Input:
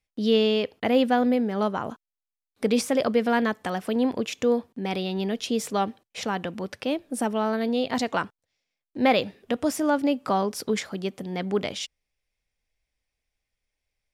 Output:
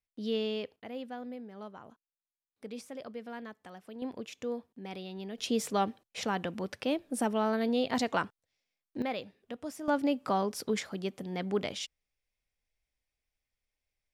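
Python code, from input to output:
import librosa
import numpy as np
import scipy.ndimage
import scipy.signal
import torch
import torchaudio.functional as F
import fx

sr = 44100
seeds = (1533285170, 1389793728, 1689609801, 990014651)

y = fx.gain(x, sr, db=fx.steps((0.0, -11.5), (0.76, -20.0), (4.02, -13.5), (5.38, -4.0), (9.02, -15.0), (9.88, -5.5)))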